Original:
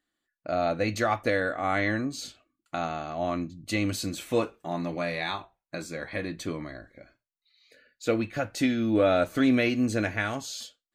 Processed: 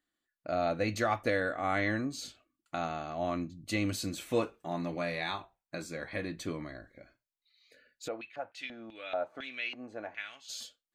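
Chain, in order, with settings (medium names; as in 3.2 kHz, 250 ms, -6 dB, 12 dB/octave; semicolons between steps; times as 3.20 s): 8.07–10.48 s: LFO band-pass square 3.9 Hz -> 0.86 Hz 800–2800 Hz; trim -4 dB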